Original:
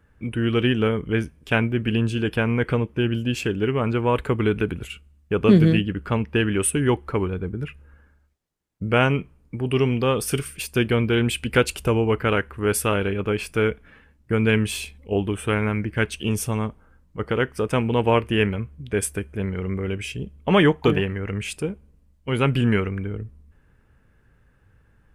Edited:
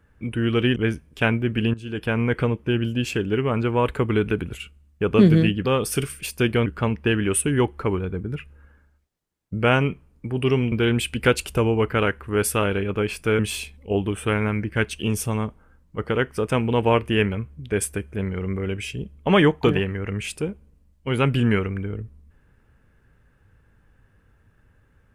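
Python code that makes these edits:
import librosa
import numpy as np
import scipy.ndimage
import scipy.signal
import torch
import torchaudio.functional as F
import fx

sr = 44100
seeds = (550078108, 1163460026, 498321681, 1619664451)

y = fx.edit(x, sr, fx.cut(start_s=0.76, length_s=0.3),
    fx.fade_in_from(start_s=2.04, length_s=0.45, floor_db=-18.0),
    fx.move(start_s=10.01, length_s=1.01, to_s=5.95),
    fx.cut(start_s=13.69, length_s=0.91), tone=tone)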